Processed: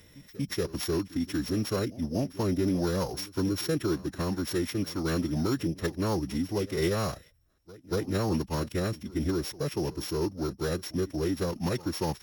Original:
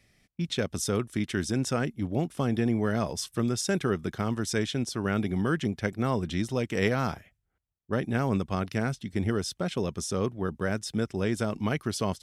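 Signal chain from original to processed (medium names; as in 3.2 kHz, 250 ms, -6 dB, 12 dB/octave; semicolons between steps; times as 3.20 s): sorted samples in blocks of 8 samples; peaking EQ 300 Hz +2 dB 2.5 oct; formant-preserving pitch shift -3.5 st; in parallel at -11 dB: saturation -21.5 dBFS, distortion -16 dB; on the sum: pre-echo 236 ms -19.5 dB; trim -4 dB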